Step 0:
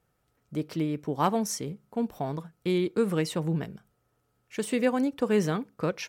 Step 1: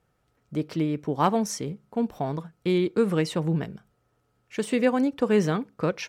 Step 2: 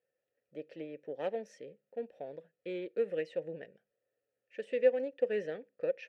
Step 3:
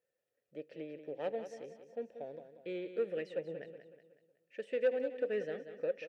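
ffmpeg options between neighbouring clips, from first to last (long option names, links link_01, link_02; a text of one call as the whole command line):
ffmpeg -i in.wav -af "highshelf=frequency=10000:gain=-11.5,volume=3dB" out.wav
ffmpeg -i in.wav -filter_complex "[0:a]aeval=exprs='0.355*(cos(1*acos(clip(val(0)/0.355,-1,1)))-cos(1*PI/2))+0.0141*(cos(7*acos(clip(val(0)/0.355,-1,1)))-cos(7*PI/2))':channel_layout=same,asplit=3[link_01][link_02][link_03];[link_01]bandpass=frequency=530:width_type=q:width=8,volume=0dB[link_04];[link_02]bandpass=frequency=1840:width_type=q:width=8,volume=-6dB[link_05];[link_03]bandpass=frequency=2480:width_type=q:width=8,volume=-9dB[link_06];[link_04][link_05][link_06]amix=inputs=3:normalize=0" out.wav
ffmpeg -i in.wav -filter_complex "[0:a]asoftclip=type=tanh:threshold=-21.5dB,asplit=2[link_01][link_02];[link_02]aecho=0:1:185|370|555|740|925:0.299|0.137|0.0632|0.0291|0.0134[link_03];[link_01][link_03]amix=inputs=2:normalize=0,volume=-1.5dB" out.wav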